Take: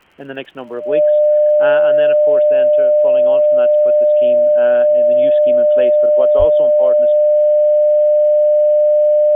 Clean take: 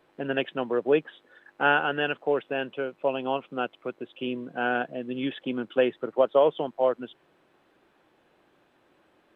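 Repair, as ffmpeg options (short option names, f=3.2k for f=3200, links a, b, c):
-filter_complex "[0:a]adeclick=t=4,bandreject=f=600:w=30,asplit=3[a][b][c];[a]afade=t=out:st=6.38:d=0.02[d];[b]highpass=f=140:w=0.5412,highpass=f=140:w=1.3066,afade=t=in:st=6.38:d=0.02,afade=t=out:st=6.5:d=0.02[e];[c]afade=t=in:st=6.5:d=0.02[f];[d][e][f]amix=inputs=3:normalize=0,agate=range=-21dB:threshold=-5dB"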